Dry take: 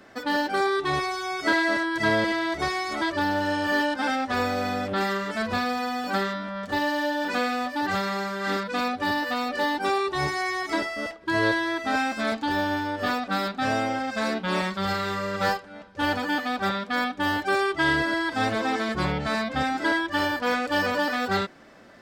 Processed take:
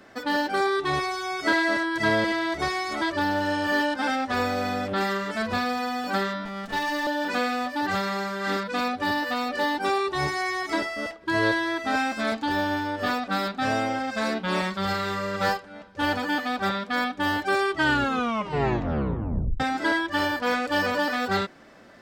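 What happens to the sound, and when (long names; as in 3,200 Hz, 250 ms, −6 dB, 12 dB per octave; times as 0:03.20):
0:06.45–0:07.07: lower of the sound and its delayed copy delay 4.5 ms
0:17.74: tape stop 1.86 s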